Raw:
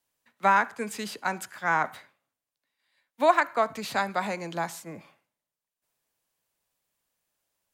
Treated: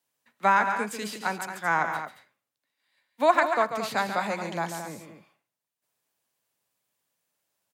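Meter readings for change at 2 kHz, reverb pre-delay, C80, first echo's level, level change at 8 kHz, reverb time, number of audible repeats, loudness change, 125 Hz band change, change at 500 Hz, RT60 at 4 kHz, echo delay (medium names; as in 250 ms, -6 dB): +1.0 dB, no reverb, no reverb, -8.5 dB, +1.0 dB, no reverb, 2, +0.5 dB, +1.0 dB, +1.0 dB, no reverb, 141 ms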